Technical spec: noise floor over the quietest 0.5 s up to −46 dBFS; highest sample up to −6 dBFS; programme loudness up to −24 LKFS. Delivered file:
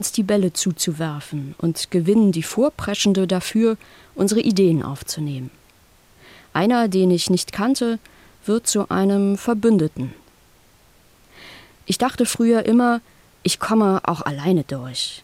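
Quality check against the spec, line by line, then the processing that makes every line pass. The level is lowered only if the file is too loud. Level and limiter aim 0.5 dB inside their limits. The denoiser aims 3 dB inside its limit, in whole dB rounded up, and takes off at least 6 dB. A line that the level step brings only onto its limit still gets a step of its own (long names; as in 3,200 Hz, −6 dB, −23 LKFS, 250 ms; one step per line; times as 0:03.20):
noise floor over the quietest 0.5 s −53 dBFS: in spec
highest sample −5.0 dBFS: out of spec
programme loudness −20.0 LKFS: out of spec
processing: level −4.5 dB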